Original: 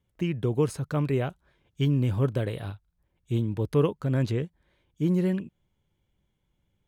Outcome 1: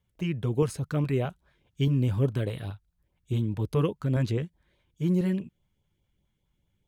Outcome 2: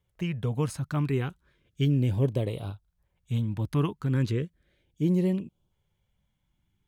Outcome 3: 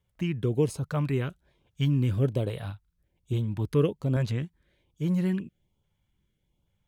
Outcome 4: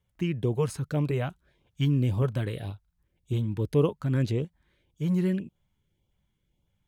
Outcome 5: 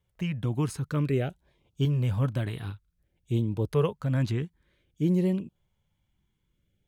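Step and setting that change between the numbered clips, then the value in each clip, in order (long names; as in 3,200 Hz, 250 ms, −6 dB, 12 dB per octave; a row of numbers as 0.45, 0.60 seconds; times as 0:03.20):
auto-filter notch, speed: 4.8, 0.35, 1.2, 1.8, 0.54 Hertz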